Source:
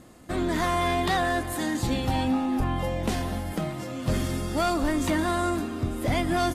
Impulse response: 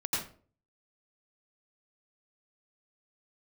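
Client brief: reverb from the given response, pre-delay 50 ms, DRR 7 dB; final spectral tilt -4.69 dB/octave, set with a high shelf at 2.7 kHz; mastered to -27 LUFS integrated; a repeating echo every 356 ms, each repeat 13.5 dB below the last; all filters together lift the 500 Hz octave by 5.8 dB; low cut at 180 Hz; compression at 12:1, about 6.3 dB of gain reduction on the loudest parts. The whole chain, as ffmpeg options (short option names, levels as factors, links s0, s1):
-filter_complex "[0:a]highpass=180,equalizer=f=500:t=o:g=9,highshelf=f=2700:g=-3.5,acompressor=threshold=0.0631:ratio=12,aecho=1:1:356|712:0.211|0.0444,asplit=2[s0][s1];[1:a]atrim=start_sample=2205,adelay=50[s2];[s1][s2]afir=irnorm=-1:irlink=0,volume=0.224[s3];[s0][s3]amix=inputs=2:normalize=0,volume=1.12"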